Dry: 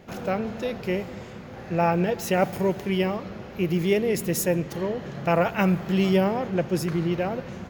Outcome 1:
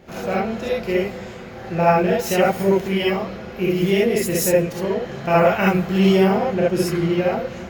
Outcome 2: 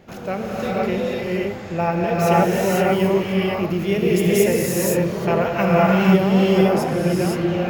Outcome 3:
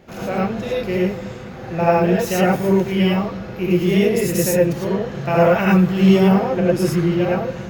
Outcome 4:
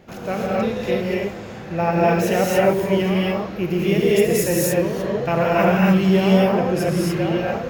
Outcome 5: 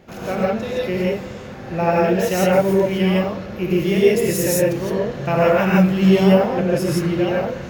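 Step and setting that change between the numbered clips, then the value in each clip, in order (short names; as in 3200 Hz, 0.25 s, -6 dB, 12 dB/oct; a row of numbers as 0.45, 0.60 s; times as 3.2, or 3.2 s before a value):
non-linear reverb, gate: 90, 540, 130, 310, 190 ms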